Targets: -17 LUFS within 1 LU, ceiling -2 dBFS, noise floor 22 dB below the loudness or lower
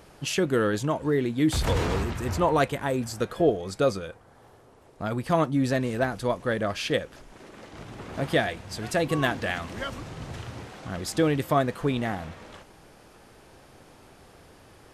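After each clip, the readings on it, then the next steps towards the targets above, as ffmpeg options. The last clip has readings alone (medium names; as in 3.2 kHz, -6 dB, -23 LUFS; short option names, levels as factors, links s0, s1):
loudness -27.0 LUFS; peak level -10.0 dBFS; loudness target -17.0 LUFS
-> -af "volume=3.16,alimiter=limit=0.794:level=0:latency=1"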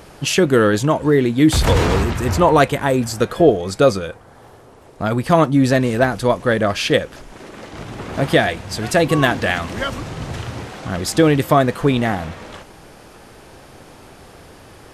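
loudness -17.0 LUFS; peak level -2.0 dBFS; noise floor -44 dBFS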